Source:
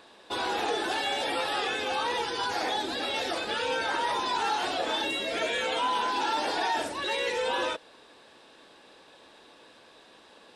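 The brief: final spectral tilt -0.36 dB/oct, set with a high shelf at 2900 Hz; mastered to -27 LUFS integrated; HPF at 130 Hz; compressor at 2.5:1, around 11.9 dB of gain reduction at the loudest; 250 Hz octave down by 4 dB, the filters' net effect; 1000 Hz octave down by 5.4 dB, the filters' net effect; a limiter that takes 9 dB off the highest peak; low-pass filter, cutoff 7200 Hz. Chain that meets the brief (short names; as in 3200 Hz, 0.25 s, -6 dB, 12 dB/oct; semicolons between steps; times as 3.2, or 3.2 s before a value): HPF 130 Hz; LPF 7200 Hz; bell 250 Hz -5 dB; bell 1000 Hz -7 dB; high shelf 2900 Hz +6.5 dB; compressor 2.5:1, threshold -45 dBFS; gain +19.5 dB; limiter -19 dBFS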